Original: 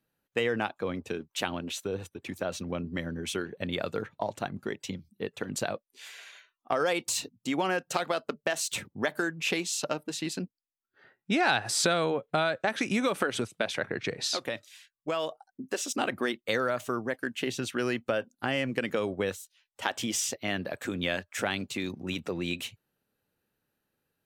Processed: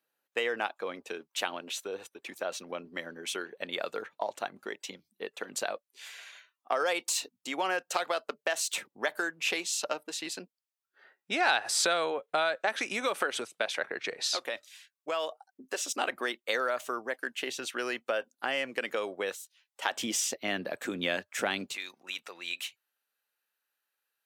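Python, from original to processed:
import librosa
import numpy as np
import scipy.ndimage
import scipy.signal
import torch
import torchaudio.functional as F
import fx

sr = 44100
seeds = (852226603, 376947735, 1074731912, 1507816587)

y = fx.highpass(x, sr, hz=fx.steps((0.0, 490.0), (19.92, 230.0), (21.75, 1100.0)), slope=12)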